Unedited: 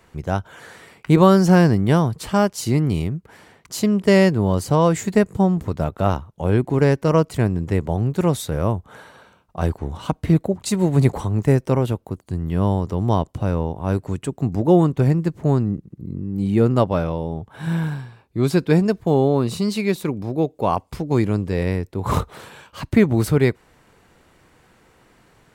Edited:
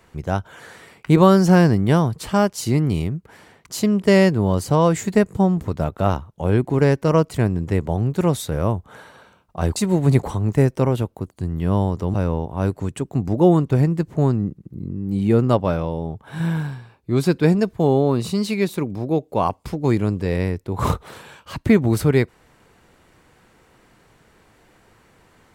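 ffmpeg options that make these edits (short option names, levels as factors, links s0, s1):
-filter_complex "[0:a]asplit=3[s0][s1][s2];[s0]atrim=end=9.762[s3];[s1]atrim=start=10.658:end=13.042[s4];[s2]atrim=start=13.408[s5];[s3][s4]acrossfade=d=0.004:c1=hsin:c2=hsin[s6];[s6][s5]acrossfade=d=0.004:c1=hsin:c2=hsin"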